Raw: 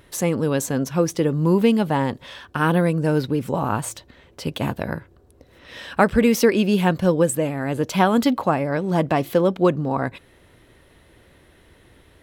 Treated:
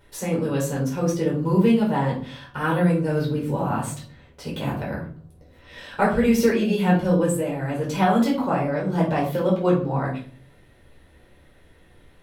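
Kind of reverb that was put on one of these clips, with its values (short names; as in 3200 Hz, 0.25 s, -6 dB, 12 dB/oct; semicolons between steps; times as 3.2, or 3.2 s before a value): shoebox room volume 360 m³, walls furnished, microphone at 4.7 m; gain -11 dB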